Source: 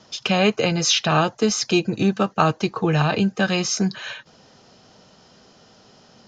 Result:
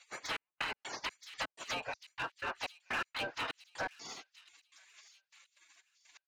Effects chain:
treble cut that deepens with the level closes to 1,200 Hz, closed at −14.5 dBFS
gate on every frequency bin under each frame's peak −25 dB weak
0:02.82–0:03.33: parametric band 3,300 Hz +4.5 dB 1.8 octaves
in parallel at 0 dB: downward compressor, threshold −50 dBFS, peak gain reduction 17.5 dB
on the sum: mid-hump overdrive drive 22 dB, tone 2,400 Hz, clips at −20.5 dBFS
gate pattern "xxx..x.xx..x." 124 BPM −60 dB
on a send: delay with a high-pass on its return 976 ms, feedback 34%, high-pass 3,600 Hz, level −13.5 dB
0:00.53–0:02.09: on the sum: multiband upward and downward compressor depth 100%
level −6 dB

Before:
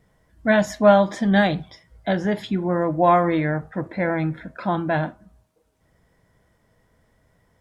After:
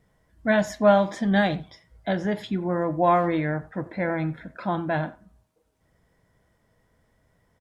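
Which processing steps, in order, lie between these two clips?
far-end echo of a speakerphone 90 ms, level −19 dB
level −3.5 dB

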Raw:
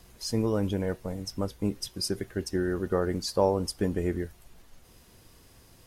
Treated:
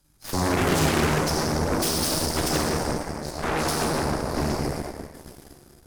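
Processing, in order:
feedback delay that plays each chunk backwards 265 ms, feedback 43%, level −7 dB
graphic EQ with 15 bands 630 Hz −9 dB, 2,500 Hz −7 dB, 10,000 Hz +4 dB
on a send: echo through a band-pass that steps 137 ms, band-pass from 520 Hz, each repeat 0.7 octaves, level −2 dB
on the sum: harmonic generator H 4 −12 dB, 5 −28 dB, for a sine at −15 dBFS
sample-and-hold tremolo, depth 90%
mains-hum notches 50/100/150/200/250/300/350/400 Hz
phase-vocoder pitch shift with formants kept −3.5 semitones
dense smooth reverb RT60 2.8 s, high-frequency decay 0.7×, DRR −4.5 dB
harmonic generator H 3 −18 dB, 8 −8 dB, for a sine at −16 dBFS
level +1.5 dB

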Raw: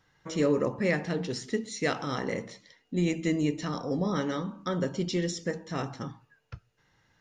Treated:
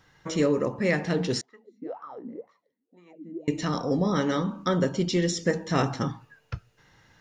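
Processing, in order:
speech leveller 0.5 s
0:01.41–0:03.48: LFO wah 2 Hz 230–1,200 Hz, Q 13
level +4.5 dB

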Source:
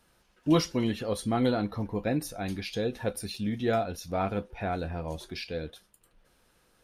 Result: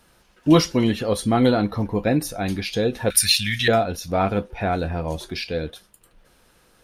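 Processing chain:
0:03.10–0:03.68: drawn EQ curve 120 Hz 0 dB, 610 Hz −28 dB, 1,700 Hz +14 dB
level +8.5 dB

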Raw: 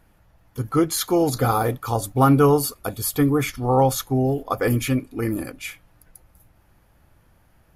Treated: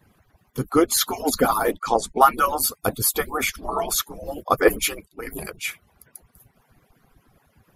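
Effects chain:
harmonic-percussive split with one part muted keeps percussive
0:01.72–0:02.21: low-pass filter 8,200 Hz 24 dB per octave
0:04.64–0:05.27: multiband upward and downward expander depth 100%
level +5 dB

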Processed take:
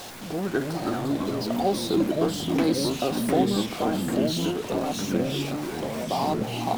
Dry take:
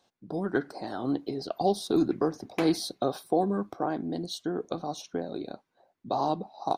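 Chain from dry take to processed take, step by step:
converter with a step at zero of −33.5 dBFS
delay with pitch and tempo change per echo 214 ms, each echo −3 semitones, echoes 3

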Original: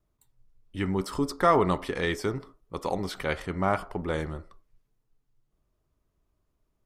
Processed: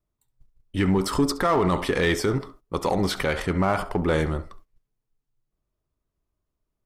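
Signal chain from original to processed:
flutter between parallel walls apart 11.7 metres, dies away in 0.21 s
noise gate −55 dBFS, range −15 dB
in parallel at −4 dB: hard clipping −26.5 dBFS, distortion −5 dB
on the sum: brickwall limiter −17.5 dBFS, peak gain reduction 9 dB
level +5 dB

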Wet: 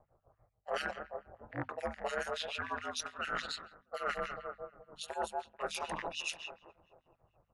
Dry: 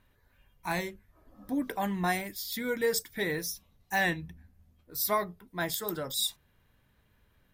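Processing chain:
loose part that buzzes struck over −39 dBFS, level −29 dBFS
low shelf with overshoot 590 Hz −11.5 dB, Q 3
repeating echo 216 ms, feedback 59%, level −17 dB
pitch shifter −5.5 semitones
ring modulation 80 Hz
low-pass that shuts in the quiet parts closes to 560 Hz, open at −30.5 dBFS
two-band tremolo in antiphase 6.9 Hz, depth 100%, crossover 1,900 Hz
reversed playback
downward compressor 16 to 1, threshold −46 dBFS, peak gain reduction 19.5 dB
reversed playback
high-frequency loss of the air 65 metres
mains-hum notches 50/100/150/200/250 Hz
level +13.5 dB

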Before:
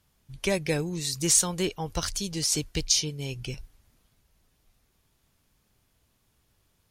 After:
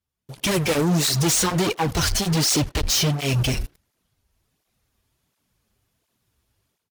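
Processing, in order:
0:01.08–0:03.26: high-shelf EQ 6,700 Hz −11.5 dB
leveller curve on the samples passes 5
automatic gain control gain up to 15 dB
soft clipping −12 dBFS, distortion −12 dB
far-end echo of a speakerphone 80 ms, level −17 dB
through-zero flanger with one copy inverted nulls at 1.4 Hz, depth 7.3 ms
level −4 dB

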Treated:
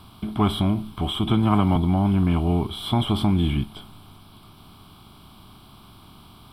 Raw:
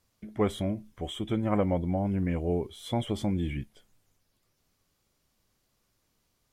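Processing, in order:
compressor on every frequency bin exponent 0.6
phaser with its sweep stopped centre 1,900 Hz, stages 6
0:01.26–0:01.76: multiband upward and downward compressor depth 40%
level +9 dB

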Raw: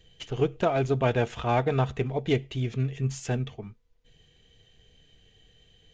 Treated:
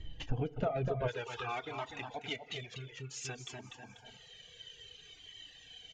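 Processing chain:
high-frequency loss of the air 93 metres
repeating echo 245 ms, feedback 21%, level −6.5 dB
feedback delay network reverb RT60 1.7 s, low-frequency decay 0.85×, high-frequency decay 0.7×, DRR 9.5 dB
downward compressor 2.5 to 1, threshold −46 dBFS, peak gain reduction 18 dB
reverb reduction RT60 0.56 s
spectral tilt −1.5 dB per octave, from 0:01.07 +4 dB per octave
flanger whose copies keep moving one way falling 0.56 Hz
level +10 dB

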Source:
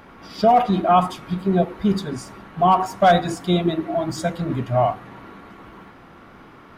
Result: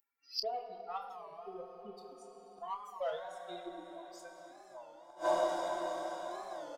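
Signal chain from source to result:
spectral dynamics exaggerated over time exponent 3
high-pass filter sweep 450 Hz → 2,900 Hz, 0:04.05–0:05.71
harmonic generator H 8 −35 dB, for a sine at −4.5 dBFS
low-shelf EQ 340 Hz −8 dB
feedback delay with all-pass diffusion 525 ms, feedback 56%, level −15 dB
dense smooth reverb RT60 3.1 s, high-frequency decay 0.75×, DRR 4 dB
in parallel at +1 dB: downward compressor, threshold −31 dBFS, peak gain reduction 19.5 dB
on the sum: gate with flip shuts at −25 dBFS, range −28 dB
low-shelf EQ 140 Hz +4 dB
double-tracking delay 29 ms −9 dB
wow of a warped record 33 1/3 rpm, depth 160 cents
level +4 dB

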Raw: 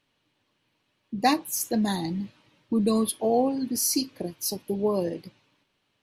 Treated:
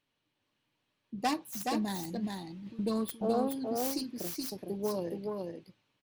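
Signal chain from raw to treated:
phase distortion by the signal itself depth 0.13 ms
0:02.02–0:02.79: compressor whose output falls as the input rises −34 dBFS, ratio −1
single-tap delay 423 ms −3.5 dB
level −8.5 dB

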